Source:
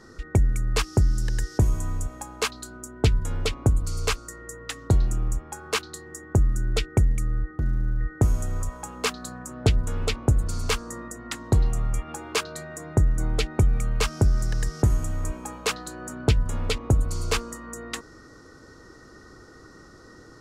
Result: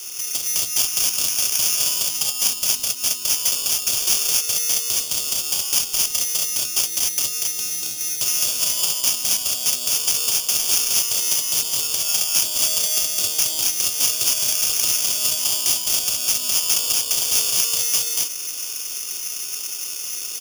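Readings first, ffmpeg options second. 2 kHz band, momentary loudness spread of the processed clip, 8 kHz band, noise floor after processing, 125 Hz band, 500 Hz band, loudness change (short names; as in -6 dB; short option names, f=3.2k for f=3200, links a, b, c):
+3.0 dB, 6 LU, +20.0 dB, -30 dBFS, -23.5 dB, -8.0 dB, +8.5 dB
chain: -filter_complex "[0:a]highpass=540,equalizer=f=7.7k:t=o:w=1.5:g=5.5,asplit=2[a][b];[b]acompressor=threshold=-40dB:ratio=6,volume=0.5dB[c];[a][c]amix=inputs=2:normalize=0,aeval=exprs='0.0562*(abs(mod(val(0)/0.0562+3,4)-2)-1)':c=same,asplit=2[d][e];[e]aecho=0:1:49.56|239.1|271.1:0.355|0.708|0.794[f];[d][f]amix=inputs=2:normalize=0,acrusher=samples=11:mix=1:aa=0.000001,aexciter=amount=15.4:drive=7.9:freq=3k,volume=-7dB"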